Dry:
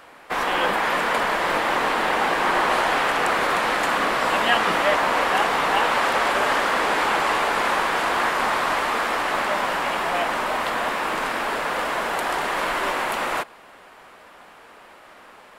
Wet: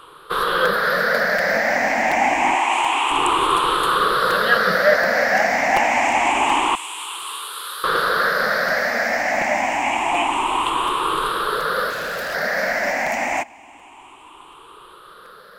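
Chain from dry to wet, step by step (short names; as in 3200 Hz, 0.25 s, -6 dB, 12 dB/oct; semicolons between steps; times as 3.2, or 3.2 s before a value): moving spectral ripple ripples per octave 0.64, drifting +0.27 Hz, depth 19 dB; 2.55–3.11 HPF 740 Hz 6 dB/oct; 6.75–7.84 differentiator; 11.9–12.35 overloaded stage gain 23 dB; crackling interface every 0.73 s, samples 256, repeat, from 0.65; gain -1 dB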